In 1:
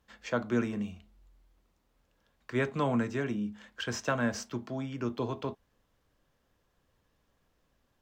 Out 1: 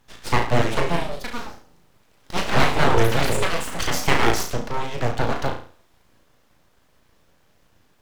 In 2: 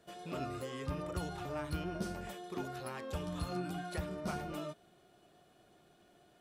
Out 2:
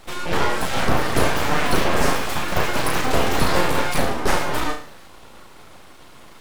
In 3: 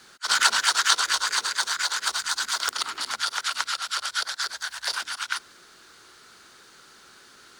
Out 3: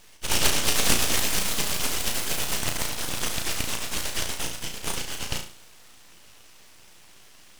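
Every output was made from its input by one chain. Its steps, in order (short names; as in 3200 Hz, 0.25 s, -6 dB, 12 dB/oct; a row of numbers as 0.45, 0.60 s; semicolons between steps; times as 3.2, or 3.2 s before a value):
echoes that change speed 0.539 s, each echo +6 st, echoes 2, each echo -6 dB; flutter echo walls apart 6 m, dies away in 0.44 s; full-wave rectifier; normalise peaks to -2 dBFS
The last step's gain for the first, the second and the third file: +12.5, +20.5, +0.5 dB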